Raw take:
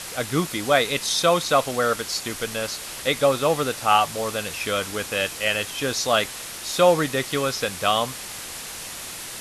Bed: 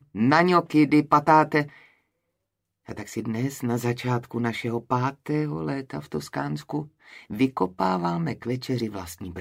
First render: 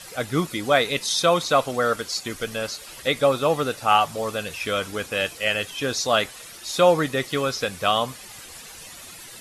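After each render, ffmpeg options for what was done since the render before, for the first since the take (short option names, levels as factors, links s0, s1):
-af "afftdn=nr=11:nf=-36"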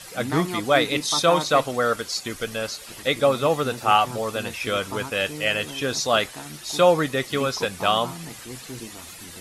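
-filter_complex "[1:a]volume=0.282[s0];[0:a][s0]amix=inputs=2:normalize=0"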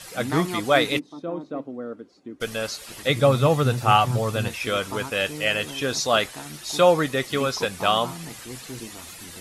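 -filter_complex "[0:a]asplit=3[s0][s1][s2];[s0]afade=t=out:st=0.98:d=0.02[s3];[s1]bandpass=f=280:t=q:w=2.9,afade=t=in:st=0.98:d=0.02,afade=t=out:st=2.4:d=0.02[s4];[s2]afade=t=in:st=2.4:d=0.02[s5];[s3][s4][s5]amix=inputs=3:normalize=0,asettb=1/sr,asplit=3[s6][s7][s8];[s6]atrim=end=3.094[s9];[s7]atrim=start=3.09:end=4.48,asetpts=PTS-STARTPTS,afade=t=in:d=0.004:c=qsin,afade=t=out:st=1.386:d=0.004:c=qsin,equalizer=f=120:w=1.5:g=14[s10];[s8]atrim=start=4.476[s11];[s9][s10]acrossfade=d=0.004:c1=hsin:c2=qsin[s12];[s12][s11]acrossfade=d=0.004:c1=qsin:c2=hsin"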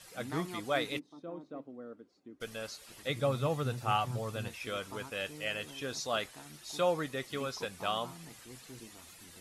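-af "volume=0.224"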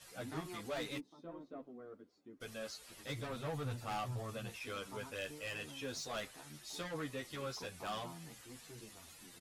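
-filter_complex "[0:a]asoftclip=type=tanh:threshold=0.02,asplit=2[s0][s1];[s1]adelay=10.3,afreqshift=-2.3[s2];[s0][s2]amix=inputs=2:normalize=1"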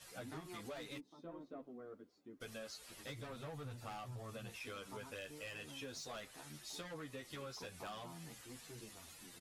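-af "acompressor=threshold=0.00562:ratio=6"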